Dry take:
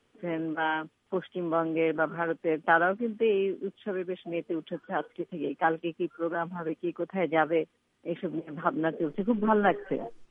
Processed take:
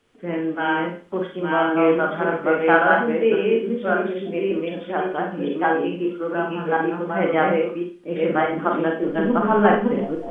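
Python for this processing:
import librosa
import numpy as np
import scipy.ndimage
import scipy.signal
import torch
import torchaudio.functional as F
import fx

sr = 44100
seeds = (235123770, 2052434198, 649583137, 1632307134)

y = fx.reverse_delay(x, sr, ms=564, wet_db=-1.0)
y = fx.rev_schroeder(y, sr, rt60_s=0.39, comb_ms=31, drr_db=1.0)
y = y * 10.0 ** (3.5 / 20.0)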